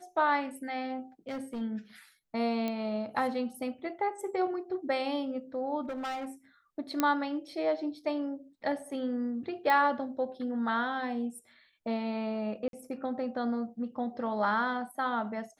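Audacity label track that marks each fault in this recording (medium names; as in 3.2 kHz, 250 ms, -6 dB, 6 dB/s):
1.280000	1.620000	clipped -33 dBFS
2.680000	2.680000	pop -20 dBFS
5.830000	6.250000	clipped -33 dBFS
7.000000	7.000000	pop -12 dBFS
9.700000	9.700000	pop -17 dBFS
12.680000	12.730000	dropout 52 ms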